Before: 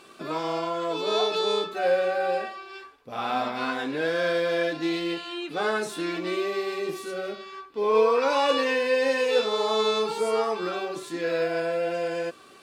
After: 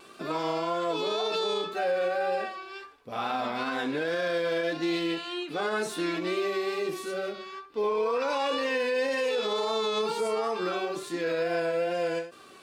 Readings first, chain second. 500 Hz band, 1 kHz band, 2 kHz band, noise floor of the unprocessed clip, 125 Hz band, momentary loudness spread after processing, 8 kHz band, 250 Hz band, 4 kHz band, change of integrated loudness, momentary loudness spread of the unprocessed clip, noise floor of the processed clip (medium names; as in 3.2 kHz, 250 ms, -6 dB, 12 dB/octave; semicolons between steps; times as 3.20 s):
-3.5 dB, -3.0 dB, -2.5 dB, -51 dBFS, -1.5 dB, 7 LU, -2.0 dB, -1.5 dB, -3.0 dB, -3.0 dB, 10 LU, -51 dBFS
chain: peak limiter -20.5 dBFS, peak gain reduction 10 dB; wow and flutter 33 cents; endings held to a fixed fall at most 150 dB/s